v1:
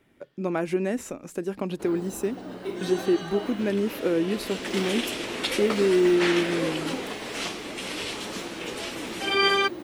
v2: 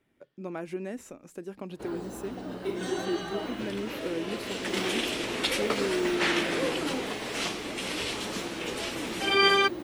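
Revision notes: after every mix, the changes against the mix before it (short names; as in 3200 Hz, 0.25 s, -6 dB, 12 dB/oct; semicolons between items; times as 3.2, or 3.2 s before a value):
speech -9.5 dB; first sound: add low shelf 63 Hz +9.5 dB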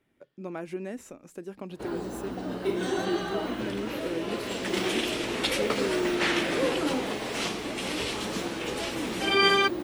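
reverb: on, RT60 1.8 s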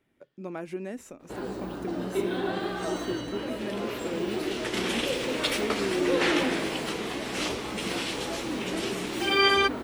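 first sound: entry -0.50 s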